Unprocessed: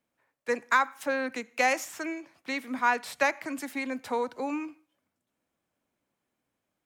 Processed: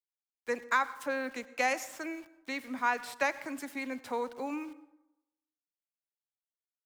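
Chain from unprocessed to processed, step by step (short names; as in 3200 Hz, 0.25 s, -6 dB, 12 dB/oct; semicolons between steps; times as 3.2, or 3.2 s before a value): sample gate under -48 dBFS; on a send: reverb RT60 0.95 s, pre-delay 83 ms, DRR 17 dB; on the sum: gain -4.5 dB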